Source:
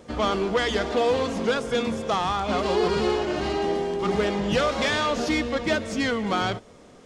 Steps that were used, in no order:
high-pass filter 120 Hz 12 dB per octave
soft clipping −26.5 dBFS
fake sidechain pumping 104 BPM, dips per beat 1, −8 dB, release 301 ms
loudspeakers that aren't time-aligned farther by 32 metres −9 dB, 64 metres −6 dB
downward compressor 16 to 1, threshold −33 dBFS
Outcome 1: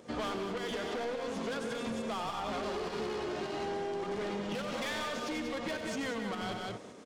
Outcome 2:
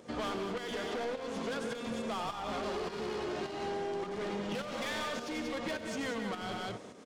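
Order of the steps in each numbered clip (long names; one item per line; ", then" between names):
high-pass filter, then soft clipping, then fake sidechain pumping, then loudspeakers that aren't time-aligned, then downward compressor
high-pass filter, then soft clipping, then loudspeakers that aren't time-aligned, then downward compressor, then fake sidechain pumping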